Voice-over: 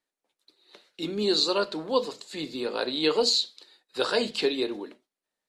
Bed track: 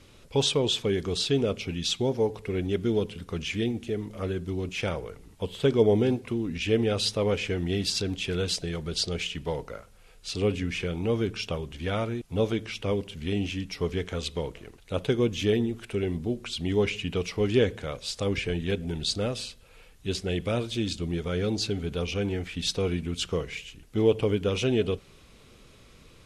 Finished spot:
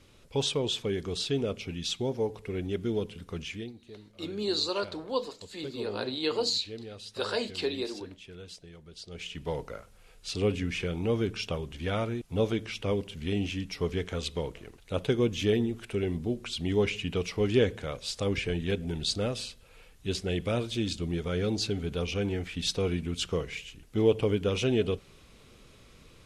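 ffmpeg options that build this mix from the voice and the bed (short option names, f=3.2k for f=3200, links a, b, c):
-filter_complex "[0:a]adelay=3200,volume=-5.5dB[a];[1:a]volume=11.5dB,afade=t=out:st=3.4:d=0.33:silence=0.223872,afade=t=in:st=9.05:d=0.52:silence=0.158489[b];[a][b]amix=inputs=2:normalize=0"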